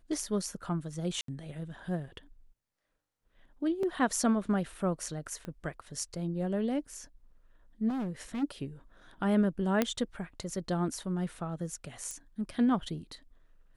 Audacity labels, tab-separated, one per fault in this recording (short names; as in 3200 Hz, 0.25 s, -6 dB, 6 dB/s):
1.210000	1.280000	gap 73 ms
3.830000	3.830000	gap 3.1 ms
5.450000	5.450000	pop -28 dBFS
7.880000	8.440000	clipped -31.5 dBFS
9.820000	9.820000	pop -12 dBFS
12.110000	12.110000	pop -25 dBFS